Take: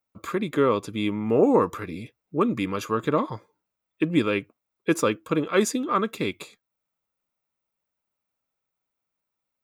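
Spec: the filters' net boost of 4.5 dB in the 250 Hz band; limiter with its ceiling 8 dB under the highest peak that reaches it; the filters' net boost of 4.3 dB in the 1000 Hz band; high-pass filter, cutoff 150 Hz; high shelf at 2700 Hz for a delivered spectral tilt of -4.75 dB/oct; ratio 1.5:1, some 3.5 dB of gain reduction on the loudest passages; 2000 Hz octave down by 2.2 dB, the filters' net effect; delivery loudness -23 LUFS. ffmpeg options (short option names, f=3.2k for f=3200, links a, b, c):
-af "highpass=150,equalizer=f=250:t=o:g=6,equalizer=f=1k:t=o:g=6.5,equalizer=f=2k:t=o:g=-9,highshelf=f=2.7k:g=8,acompressor=threshold=-21dB:ratio=1.5,volume=4.5dB,alimiter=limit=-11.5dB:level=0:latency=1"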